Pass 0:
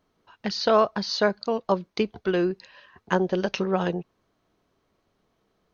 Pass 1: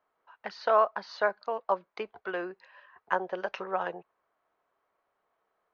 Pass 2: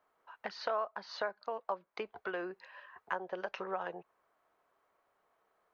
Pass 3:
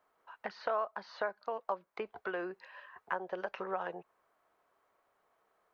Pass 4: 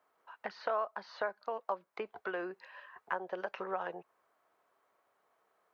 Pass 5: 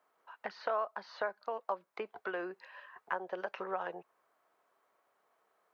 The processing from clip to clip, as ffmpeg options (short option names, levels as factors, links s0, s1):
-filter_complex "[0:a]acrossover=split=560 2100:gain=0.0631 1 0.1[s0][s1][s2];[s0][s1][s2]amix=inputs=3:normalize=0"
-af "acompressor=threshold=0.01:ratio=2.5,volume=1.26"
-filter_complex "[0:a]acrossover=split=2600[s0][s1];[s1]acompressor=threshold=0.00158:ratio=4:attack=1:release=60[s2];[s0][s2]amix=inputs=2:normalize=0,volume=1.12"
-af "highpass=f=140:p=1"
-af "lowshelf=f=82:g=-9.5"